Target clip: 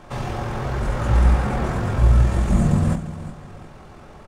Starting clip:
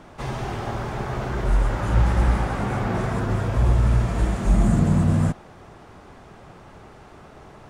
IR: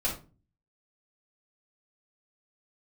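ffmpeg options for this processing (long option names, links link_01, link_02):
-filter_complex "[0:a]aecho=1:1:649|1298|1947:0.2|0.0638|0.0204,asplit=2[link_01][link_02];[1:a]atrim=start_sample=2205,afade=type=out:start_time=0.18:duration=0.01,atrim=end_sample=8379,highshelf=frequency=3800:gain=6.5[link_03];[link_02][link_03]afir=irnorm=-1:irlink=0,volume=-13dB[link_04];[link_01][link_04]amix=inputs=2:normalize=0,atempo=1.8"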